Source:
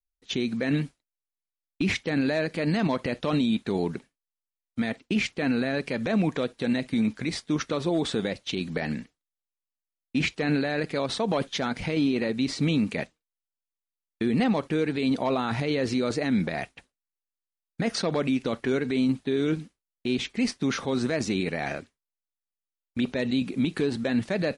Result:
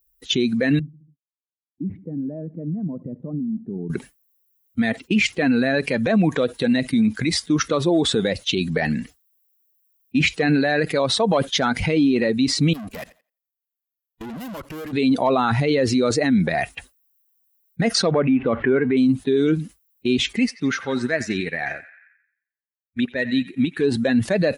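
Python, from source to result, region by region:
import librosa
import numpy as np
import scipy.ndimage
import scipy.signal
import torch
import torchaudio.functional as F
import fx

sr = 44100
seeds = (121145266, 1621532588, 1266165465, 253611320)

y = fx.chain(x, sr, fx.ladder_bandpass(hz=200.0, resonance_pct=20),
    fx.echo_feedback(ms=71, feedback_pct=58, wet_db=-23.0), at=(0.79, 3.9))
y = fx.chain(y, sr, fx.tube_stage(drive_db=40.0, bias=0.6),
    fx.level_steps(step_db=22),
    fx.echo_thinned(ms=86, feedback_pct=28, hz=190.0, wet_db=-24), at=(12.73, 14.93))
y = fx.chain(y, sr, fx.zero_step(step_db=-40.0),
    fx.lowpass(hz=2700.0, slope=24), at=(18.11, 18.97))
y = fx.chain(y, sr, fx.peak_eq(hz=1800.0, db=5.5, octaves=0.83),
    fx.echo_banded(ms=88, feedback_pct=57, hz=1800.0, wet_db=-7.0),
    fx.upward_expand(threshold_db=-37.0, expansion=2.5), at=(20.39, 23.84))
y = fx.bin_expand(y, sr, power=1.5)
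y = scipy.signal.sosfilt(scipy.signal.butter(2, 41.0, 'highpass', fs=sr, output='sos'), y)
y = fx.env_flatten(y, sr, amount_pct=50)
y = y * librosa.db_to_amplitude(7.0)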